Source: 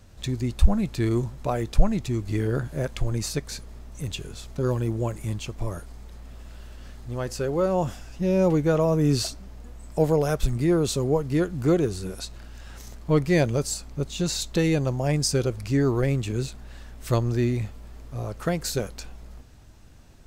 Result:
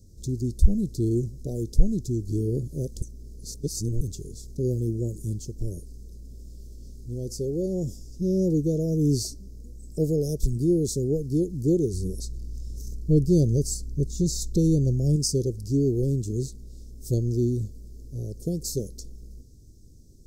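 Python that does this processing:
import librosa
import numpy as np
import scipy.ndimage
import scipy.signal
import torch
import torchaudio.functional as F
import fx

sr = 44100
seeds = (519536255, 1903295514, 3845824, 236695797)

y = fx.low_shelf(x, sr, hz=140.0, db=9.0, at=(11.93, 15.16))
y = fx.edit(y, sr, fx.reverse_span(start_s=3.02, length_s=0.99), tone=tone)
y = scipy.signal.sosfilt(scipy.signal.ellip(3, 1.0, 60, [420.0, 5300.0], 'bandstop', fs=sr, output='sos'), y)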